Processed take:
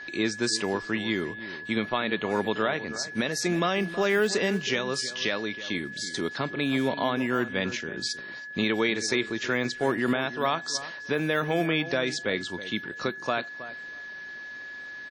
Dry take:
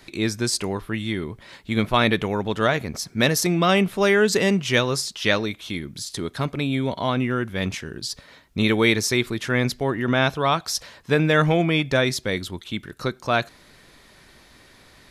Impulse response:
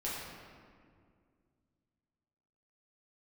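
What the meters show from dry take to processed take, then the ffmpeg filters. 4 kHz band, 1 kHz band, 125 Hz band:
−4.5 dB, −5.5 dB, −11.0 dB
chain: -filter_complex "[0:a]acrossover=split=180 8000:gain=0.178 1 0.112[link_01][link_02][link_03];[link_01][link_02][link_03]amix=inputs=3:normalize=0,alimiter=limit=-14.5dB:level=0:latency=1:release=360,acrusher=bits=5:mode=log:mix=0:aa=0.000001,aeval=exprs='val(0)+0.0126*sin(2*PI*1700*n/s)':channel_layout=same,asplit=2[link_04][link_05];[link_05]adelay=321,lowpass=frequency=1700:poles=1,volume=-13.5dB,asplit=2[link_06][link_07];[link_07]adelay=321,lowpass=frequency=1700:poles=1,volume=0.16[link_08];[link_06][link_08]amix=inputs=2:normalize=0[link_09];[link_04][link_09]amix=inputs=2:normalize=0" -ar 48000 -c:a wmav2 -b:a 32k

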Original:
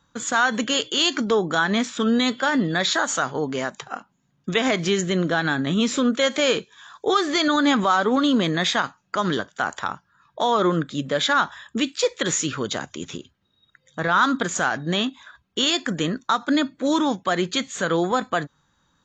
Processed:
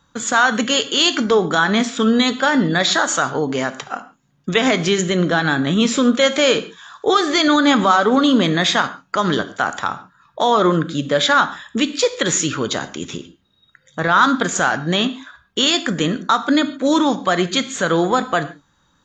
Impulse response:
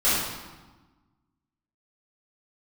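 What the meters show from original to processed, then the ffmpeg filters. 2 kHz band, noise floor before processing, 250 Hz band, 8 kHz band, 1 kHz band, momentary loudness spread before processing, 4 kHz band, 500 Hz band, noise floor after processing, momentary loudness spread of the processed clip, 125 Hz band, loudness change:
+5.0 dB, −68 dBFS, +5.0 dB, +5.0 dB, +5.0 dB, 9 LU, +5.0 dB, +5.0 dB, −61 dBFS, 10 LU, +5.0 dB, +5.0 dB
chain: -filter_complex "[0:a]asplit=2[link_01][link_02];[1:a]atrim=start_sample=2205,afade=type=out:start_time=0.2:duration=0.01,atrim=end_sample=9261[link_03];[link_02][link_03]afir=irnorm=-1:irlink=0,volume=-27dB[link_04];[link_01][link_04]amix=inputs=2:normalize=0,volume=4.5dB"

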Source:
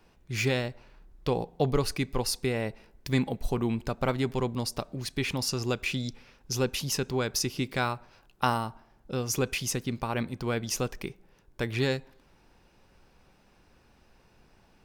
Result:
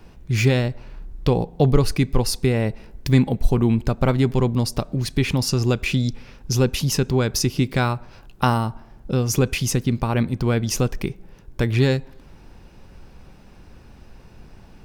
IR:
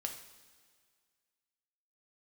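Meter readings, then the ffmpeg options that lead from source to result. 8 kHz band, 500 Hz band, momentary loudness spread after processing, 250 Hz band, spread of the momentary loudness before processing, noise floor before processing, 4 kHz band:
+5.5 dB, +7.5 dB, 8 LU, +10.0 dB, 8 LU, −62 dBFS, +5.0 dB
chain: -filter_complex "[0:a]lowshelf=frequency=280:gain=10,asplit=2[link_01][link_02];[link_02]acompressor=threshold=-34dB:ratio=6,volume=-0.5dB[link_03];[link_01][link_03]amix=inputs=2:normalize=0,volume=3dB"

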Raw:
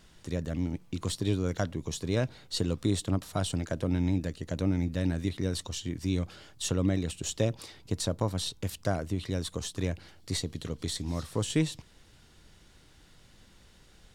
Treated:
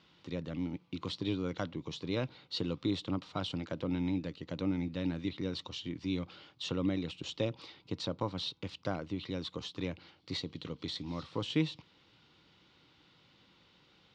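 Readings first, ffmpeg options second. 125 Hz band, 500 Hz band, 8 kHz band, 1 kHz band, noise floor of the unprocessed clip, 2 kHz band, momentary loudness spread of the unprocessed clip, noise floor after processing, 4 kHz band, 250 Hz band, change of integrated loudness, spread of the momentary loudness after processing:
−9.0 dB, −5.0 dB, −18.0 dB, −3.5 dB, −58 dBFS, −4.0 dB, 7 LU, −66 dBFS, −2.5 dB, −3.5 dB, −5.5 dB, 7 LU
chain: -af "highpass=180,equalizer=frequency=220:width_type=q:width=4:gain=-6,equalizer=frequency=410:width_type=q:width=4:gain=-6,equalizer=frequency=660:width_type=q:width=4:gain=-9,equalizer=frequency=1700:width_type=q:width=4:gain=-9,lowpass=frequency=4200:width=0.5412,lowpass=frequency=4200:width=1.3066"

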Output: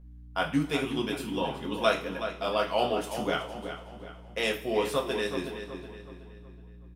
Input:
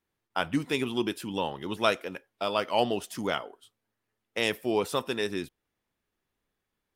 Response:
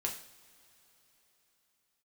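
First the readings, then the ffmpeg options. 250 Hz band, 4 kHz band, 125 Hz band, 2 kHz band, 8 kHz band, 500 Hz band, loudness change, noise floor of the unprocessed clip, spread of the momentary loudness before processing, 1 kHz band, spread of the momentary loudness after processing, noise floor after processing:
0.0 dB, −0.5 dB, +1.5 dB, 0.0 dB, −1.0 dB, +1.0 dB, −0.5 dB, −84 dBFS, 9 LU, 0.0 dB, 18 LU, −48 dBFS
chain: -filter_complex "[0:a]aeval=exprs='val(0)+0.00447*(sin(2*PI*60*n/s)+sin(2*PI*2*60*n/s)/2+sin(2*PI*3*60*n/s)/3+sin(2*PI*4*60*n/s)/4+sin(2*PI*5*60*n/s)/5)':channel_layout=same,asplit=2[link_01][link_02];[link_02]adelay=372,lowpass=frequency=4100:poles=1,volume=-9dB,asplit=2[link_03][link_04];[link_04]adelay=372,lowpass=frequency=4100:poles=1,volume=0.44,asplit=2[link_05][link_06];[link_06]adelay=372,lowpass=frequency=4100:poles=1,volume=0.44,asplit=2[link_07][link_08];[link_08]adelay=372,lowpass=frequency=4100:poles=1,volume=0.44,asplit=2[link_09][link_10];[link_10]adelay=372,lowpass=frequency=4100:poles=1,volume=0.44[link_11];[link_01][link_03][link_05][link_07][link_09][link_11]amix=inputs=6:normalize=0[link_12];[1:a]atrim=start_sample=2205,asetrate=66150,aresample=44100[link_13];[link_12][link_13]afir=irnorm=-1:irlink=0,volume=1dB"

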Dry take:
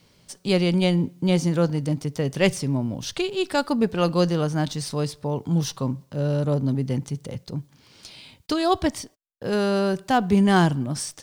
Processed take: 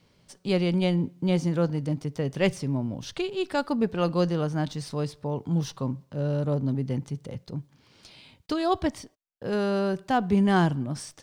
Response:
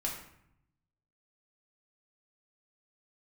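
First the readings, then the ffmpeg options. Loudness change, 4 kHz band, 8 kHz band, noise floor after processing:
−3.5 dB, −6.5 dB, −9.5 dB, −64 dBFS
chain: -af "highshelf=frequency=4600:gain=-8.5,volume=-3.5dB"

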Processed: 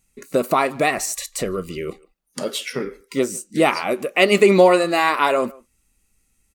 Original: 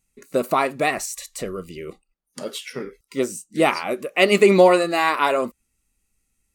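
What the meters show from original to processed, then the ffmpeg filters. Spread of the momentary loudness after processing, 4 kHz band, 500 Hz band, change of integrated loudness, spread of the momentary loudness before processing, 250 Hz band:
16 LU, +2.0 dB, +1.0 dB, +0.5 dB, 19 LU, +1.5 dB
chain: -filter_complex "[0:a]asplit=2[link_01][link_02];[link_02]acompressor=threshold=-27dB:ratio=6,volume=2dB[link_03];[link_01][link_03]amix=inputs=2:normalize=0,asplit=2[link_04][link_05];[link_05]adelay=150,highpass=300,lowpass=3400,asoftclip=type=hard:threshold=-10.5dB,volume=-23dB[link_06];[link_04][link_06]amix=inputs=2:normalize=0,volume=-1dB"

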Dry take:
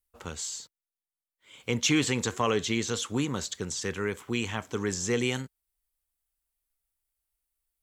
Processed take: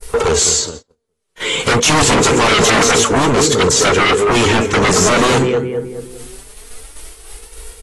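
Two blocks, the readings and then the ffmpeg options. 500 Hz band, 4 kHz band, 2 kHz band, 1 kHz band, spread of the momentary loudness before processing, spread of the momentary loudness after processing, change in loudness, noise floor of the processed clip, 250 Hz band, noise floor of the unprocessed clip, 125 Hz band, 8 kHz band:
+19.0 dB, +18.0 dB, +18.5 dB, +22.5 dB, 11 LU, 10 LU, +17.5 dB, −69 dBFS, +13.5 dB, below −85 dBFS, +15.5 dB, +19.0 dB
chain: -filter_complex "[0:a]acompressor=mode=upward:threshold=-34dB:ratio=2.5,adynamicequalizer=threshold=0.00501:dfrequency=3400:dqfactor=1.9:tfrequency=3400:tqfactor=1.9:attack=5:release=100:ratio=0.375:range=3:mode=cutabove:tftype=bell,asplit=2[link_01][link_02];[link_02]adelay=209,lowpass=frequency=1400:poles=1,volume=-12dB,asplit=2[link_03][link_04];[link_04]adelay=209,lowpass=frequency=1400:poles=1,volume=0.46,asplit=2[link_05][link_06];[link_06]adelay=209,lowpass=frequency=1400:poles=1,volume=0.46,asplit=2[link_07][link_08];[link_08]adelay=209,lowpass=frequency=1400:poles=1,volume=0.46,asplit=2[link_09][link_10];[link_10]adelay=209,lowpass=frequency=1400:poles=1,volume=0.46[link_11];[link_01][link_03][link_05][link_07][link_09][link_11]amix=inputs=6:normalize=0,volume=29.5dB,asoftclip=hard,volume=-29.5dB,flanger=delay=2.1:depth=4.1:regen=53:speed=0.26:shape=sinusoidal,equalizer=frequency=440:width_type=o:width=0.28:gain=14,aeval=exprs='0.112*sin(PI/2*6.31*val(0)/0.112)':channel_layout=same,agate=range=-33dB:threshold=-39dB:ratio=16:detection=peak,acontrast=42,volume=3.5dB" -ar 24000 -c:a aac -b:a 32k

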